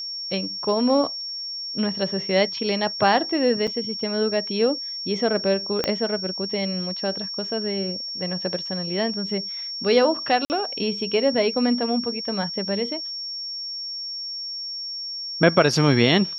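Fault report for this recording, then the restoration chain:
tone 5500 Hz -29 dBFS
3.67–3.68 gap 6.1 ms
5.84 pop -8 dBFS
10.45–10.5 gap 49 ms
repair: de-click; notch 5500 Hz, Q 30; interpolate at 3.67, 6.1 ms; interpolate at 10.45, 49 ms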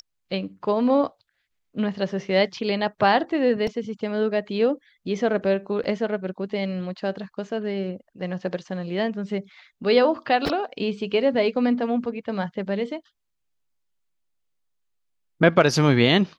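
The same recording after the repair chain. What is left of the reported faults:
5.84 pop

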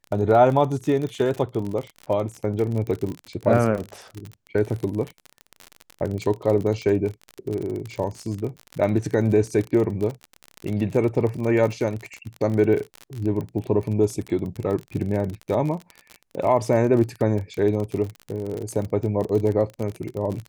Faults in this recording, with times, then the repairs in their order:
crackle 39/s -27 dBFS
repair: de-click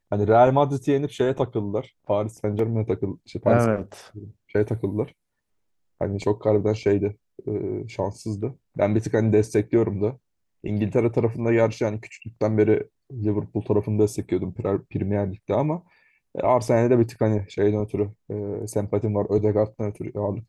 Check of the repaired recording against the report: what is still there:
none

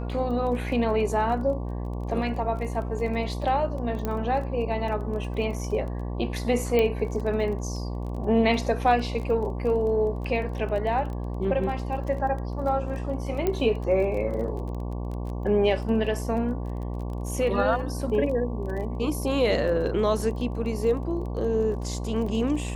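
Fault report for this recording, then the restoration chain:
buzz 60 Hz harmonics 19 -31 dBFS
crackle 20/s -34 dBFS
4.05 pop -15 dBFS
6.79 pop -12 dBFS
13.47 pop -13 dBFS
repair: de-click; de-hum 60 Hz, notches 19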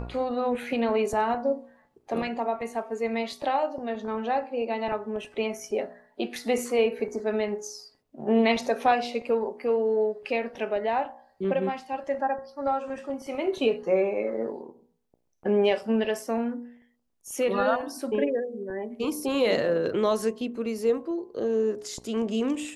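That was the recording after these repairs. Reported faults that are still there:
none

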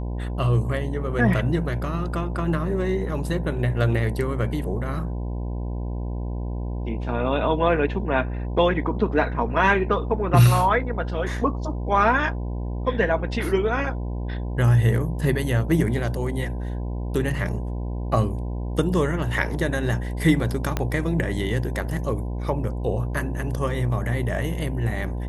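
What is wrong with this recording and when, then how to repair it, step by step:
buzz 60 Hz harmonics 17 -28 dBFS
20.77 pop -9 dBFS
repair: de-click; de-hum 60 Hz, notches 17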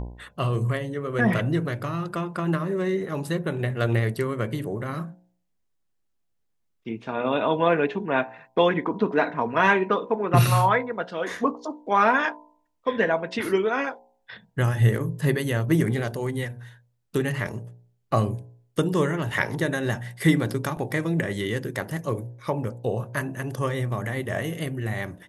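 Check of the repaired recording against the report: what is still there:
20.77 pop

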